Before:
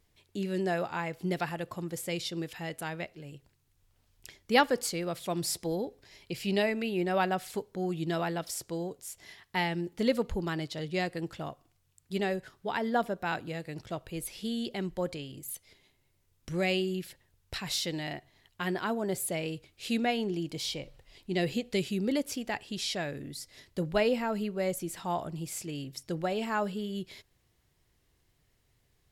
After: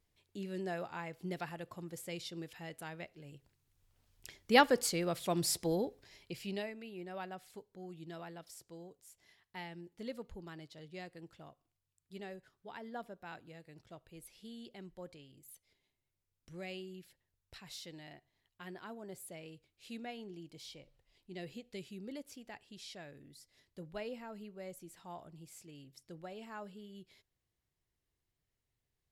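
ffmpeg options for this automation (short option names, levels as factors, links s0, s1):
-af "volume=0.891,afade=t=in:st=2.98:d=1.71:silence=0.398107,afade=t=out:st=5.81:d=0.55:silence=0.446684,afade=t=out:st=6.36:d=0.37:silence=0.398107"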